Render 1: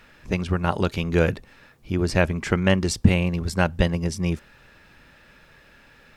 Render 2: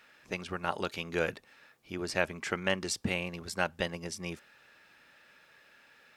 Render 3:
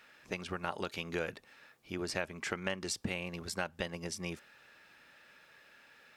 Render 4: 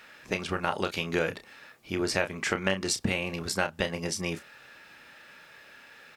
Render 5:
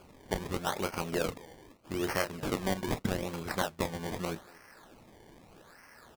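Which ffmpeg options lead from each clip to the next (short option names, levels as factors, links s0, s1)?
-af "highpass=f=640:p=1,bandreject=f=1000:w=20,volume=0.531"
-af "acompressor=threshold=0.0224:ratio=3"
-filter_complex "[0:a]asplit=2[s0][s1];[s1]adelay=31,volume=0.355[s2];[s0][s2]amix=inputs=2:normalize=0,volume=2.51"
-filter_complex "[0:a]asplit=2[s0][s1];[s1]adelay=230,highpass=300,lowpass=3400,asoftclip=type=hard:threshold=0.133,volume=0.1[s2];[s0][s2]amix=inputs=2:normalize=0,acrusher=samples=23:mix=1:aa=0.000001:lfo=1:lforange=23:lforate=0.81,volume=0.668"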